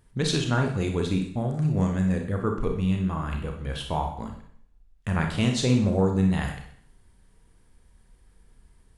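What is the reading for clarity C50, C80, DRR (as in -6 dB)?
6.0 dB, 10.0 dB, 2.5 dB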